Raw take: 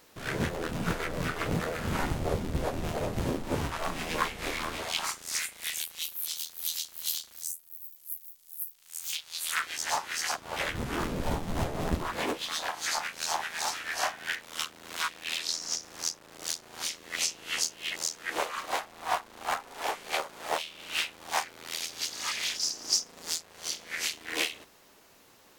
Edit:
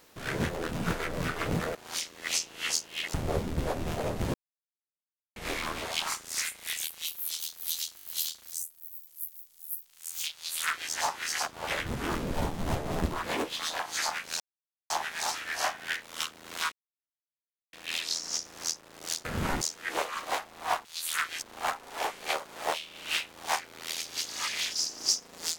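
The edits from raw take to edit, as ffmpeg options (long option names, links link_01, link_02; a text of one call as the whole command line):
ffmpeg -i in.wav -filter_complex "[0:a]asplit=15[link_01][link_02][link_03][link_04][link_05][link_06][link_07][link_08][link_09][link_10][link_11][link_12][link_13][link_14][link_15];[link_01]atrim=end=1.752[link_16];[link_02]atrim=start=16.628:end=18.022[link_17];[link_03]atrim=start=2.108:end=3.31,asetpts=PTS-STARTPTS,afade=type=out:start_time=1.198:duration=0.004:curve=hsin[link_18];[link_04]atrim=start=3.31:end=4.33,asetpts=PTS-STARTPTS,volume=0[link_19];[link_05]atrim=start=4.33:end=6.952,asetpts=PTS-STARTPTS,afade=type=in:duration=0.004:curve=hsin[link_20];[link_06]atrim=start=6.928:end=6.952[link_21];[link_07]atrim=start=6.928:end=6.952[link_22];[link_08]atrim=start=6.928:end=6.952[link_23];[link_09]atrim=start=6.928:end=13.29,asetpts=PTS-STARTPTS,afade=type=out:start_time=6.358:duration=0.004:curve=hsin,apad=pad_dur=0.5[link_24];[link_10]atrim=start=13.29:end=15.11,asetpts=PTS-STARTPTS,afade=type=in:duration=0.004:curve=hsin,afade=type=out:start_time=1.816:duration=0.004:curve=hsin,apad=pad_dur=1.01[link_25];[link_11]atrim=start=15.11:end=16.632,asetpts=PTS-STARTPTS,afade=type=in:duration=0.004:curve=hsin[link_26];[link_12]atrim=start=1.748:end=2.112[link_27];[link_13]atrim=start=18.018:end=19.262[link_28];[link_14]atrim=start=9.228:end=9.802[link_29];[link_15]atrim=start=19.258[link_30];[link_16][link_17]acrossfade=duration=0.004:curve1=hsin:curve2=hsin[link_31];[link_18][link_19][link_20]concat=n=3:v=0:a=1[link_32];[link_31][link_32]acrossfade=duration=0.004:curve1=hsin:curve2=hsin[link_33];[link_33][link_21]acrossfade=duration=0.004:curve1=hsin:curve2=hsin[link_34];[link_34][link_22]acrossfade=duration=0.004:curve1=hsin:curve2=hsin[link_35];[link_35][link_23]acrossfade=duration=0.004:curve1=hsin:curve2=hsin[link_36];[link_24][link_25][link_26]concat=n=3:v=0:a=1[link_37];[link_36][link_37]acrossfade=duration=0.004:curve1=hsin:curve2=hsin[link_38];[link_38][link_27]acrossfade=duration=0.004:curve1=hsin:curve2=hsin[link_39];[link_39][link_28]acrossfade=duration=0.004:curve1=hsin:curve2=hsin[link_40];[link_40][link_29]acrossfade=duration=0.004:curve1=hsin:curve2=hsin[link_41];[link_41][link_30]acrossfade=duration=0.004:curve1=hsin:curve2=hsin" out.wav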